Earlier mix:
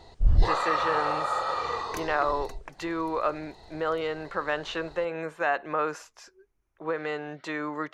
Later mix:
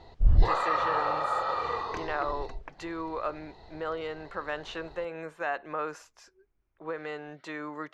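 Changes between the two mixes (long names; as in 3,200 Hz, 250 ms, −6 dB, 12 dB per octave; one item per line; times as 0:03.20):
speech −5.5 dB
first sound: add high-frequency loss of the air 150 metres
second sound: add high-frequency loss of the air 170 metres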